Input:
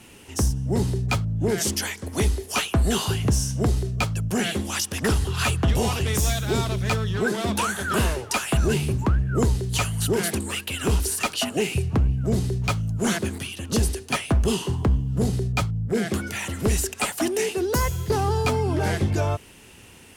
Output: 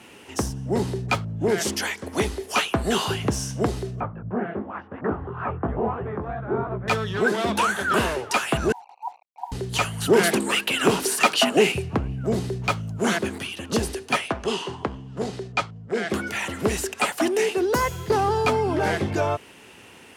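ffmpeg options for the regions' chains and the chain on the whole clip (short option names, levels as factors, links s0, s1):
-filter_complex "[0:a]asettb=1/sr,asplit=3[s0][s1][s2];[s0]atrim=end=4.004[s3];[s1]atrim=start=4:end=6.88,asetpts=PTS-STARTPTS,afade=t=in:d=0.004:c=qsin,afade=t=out:st=2.876:d=0.004:c=qsin,lowpass=f=1400:w=0.5412,lowpass=f=1400:w=1.3066,flanger=delay=16:depth=7.2:speed=2.9[s4];[s2]atrim=start=6.876[s5];[s3][s4]acrossfade=d=0.004:c1=hsin:c2=qsin[s6];[s6][s5]acrossfade=d=0.004:c1=qsin:c2=hsin,asettb=1/sr,asplit=3[s7][s8][s9];[s7]atrim=end=8.724[s10];[s8]atrim=start=8.72:end=9.52,asetpts=PTS-STARTPTS,afade=t=in:d=0.004:c=qsin,afade=t=out:st=0.796:d=0.004:c=qsin,asuperpass=centerf=840:order=20:qfactor=3,acrusher=bits=8:mix=0:aa=0.5[s11];[s9]atrim=start=9.516[s12];[s10][s11]acrossfade=d=0.004:c1=hsin:c2=qsin[s13];[s13][s12]acrossfade=d=0.004:c1=qsin:c2=hsin,asettb=1/sr,asplit=3[s14][s15][s16];[s14]atrim=end=10.074[s17];[s15]atrim=start=10.07:end=11.72,asetpts=PTS-STARTPTS,afade=t=in:d=0.004:c=qsin,afade=t=out:st=1.646:d=0.004:c=qsin,highpass=f=130:w=0.5412,highpass=f=130:w=1.3066,acontrast=27[s18];[s16]atrim=start=11.716[s19];[s17][s18]acrossfade=d=0.004:c1=hsin:c2=qsin[s20];[s20][s19]acrossfade=d=0.004:c1=qsin:c2=hsin,asettb=1/sr,asplit=3[s21][s22][s23];[s21]atrim=end=14.284[s24];[s22]atrim=start=14.28:end=16.1,asetpts=PTS-STARTPTS,afade=t=in:d=0.004:c=qsin,afade=t=out:st=1.816:d=0.004:c=qsin,lowpass=7200,lowshelf=f=290:g=-10.5[s25];[s23]atrim=start=16.096[s26];[s24][s25]acrossfade=d=0.004:c1=hsin:c2=qsin[s27];[s27][s26]acrossfade=d=0.004:c1=qsin:c2=hsin,acontrast=43,highpass=f=390:p=1,highshelf=f=4200:g=-11.5"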